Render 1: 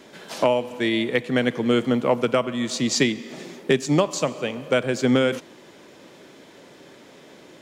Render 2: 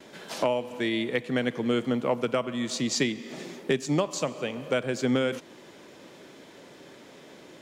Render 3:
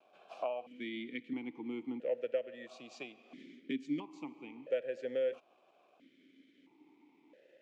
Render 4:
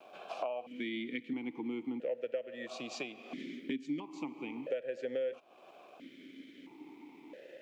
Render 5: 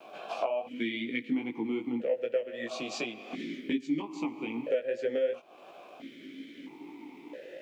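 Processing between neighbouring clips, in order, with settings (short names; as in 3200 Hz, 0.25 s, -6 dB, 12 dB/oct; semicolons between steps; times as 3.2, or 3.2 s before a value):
in parallel at +0.5 dB: compressor, threshold -29 dBFS, peak gain reduction 14.5 dB; on the sum: gate with hold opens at -35 dBFS; gain -8 dB
crossover distortion -56.5 dBFS; vowel sequencer 1.5 Hz; gain -2.5 dB
compressor 2.5:1, threshold -52 dBFS, peak gain reduction 15.5 dB; gain +12 dB
chorus 2.6 Hz, delay 17 ms, depth 2.6 ms; gain +9 dB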